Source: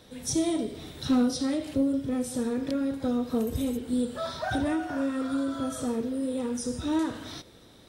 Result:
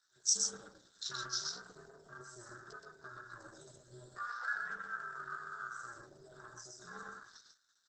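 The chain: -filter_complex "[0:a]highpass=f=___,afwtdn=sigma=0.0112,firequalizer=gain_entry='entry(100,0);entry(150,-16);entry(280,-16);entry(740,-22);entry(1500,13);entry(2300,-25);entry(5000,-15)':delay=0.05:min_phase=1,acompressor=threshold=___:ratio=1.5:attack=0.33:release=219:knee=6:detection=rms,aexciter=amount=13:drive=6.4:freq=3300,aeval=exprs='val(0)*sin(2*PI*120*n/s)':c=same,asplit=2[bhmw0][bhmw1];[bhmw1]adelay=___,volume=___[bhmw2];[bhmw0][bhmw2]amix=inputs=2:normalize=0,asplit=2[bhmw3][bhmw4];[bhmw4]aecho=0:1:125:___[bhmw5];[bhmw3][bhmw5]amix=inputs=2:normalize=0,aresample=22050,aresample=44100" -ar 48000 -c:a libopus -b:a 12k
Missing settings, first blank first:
490, -43dB, 16, -6dB, 0.668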